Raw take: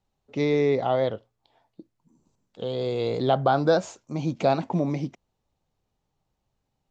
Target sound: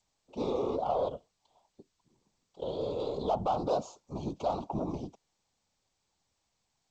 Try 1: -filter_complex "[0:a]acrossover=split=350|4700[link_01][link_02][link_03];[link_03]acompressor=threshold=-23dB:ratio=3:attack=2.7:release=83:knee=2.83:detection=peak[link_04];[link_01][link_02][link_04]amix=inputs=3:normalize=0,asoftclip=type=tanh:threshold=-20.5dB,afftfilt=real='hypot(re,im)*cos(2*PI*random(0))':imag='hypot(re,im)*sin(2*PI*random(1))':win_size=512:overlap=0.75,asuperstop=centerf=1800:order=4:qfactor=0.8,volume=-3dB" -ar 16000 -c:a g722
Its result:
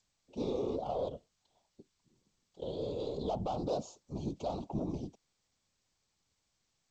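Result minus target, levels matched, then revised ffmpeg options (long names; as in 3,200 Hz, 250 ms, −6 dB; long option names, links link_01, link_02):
1,000 Hz band −3.5 dB
-filter_complex "[0:a]acrossover=split=350|4700[link_01][link_02][link_03];[link_03]acompressor=threshold=-23dB:ratio=3:attack=2.7:release=83:knee=2.83:detection=peak[link_04];[link_01][link_02][link_04]amix=inputs=3:normalize=0,asoftclip=type=tanh:threshold=-20.5dB,afftfilt=real='hypot(re,im)*cos(2*PI*random(0))':imag='hypot(re,im)*sin(2*PI*random(1))':win_size=512:overlap=0.75,asuperstop=centerf=1800:order=4:qfactor=0.8,equalizer=frequency=1200:width=0.69:gain=11,volume=-3dB" -ar 16000 -c:a g722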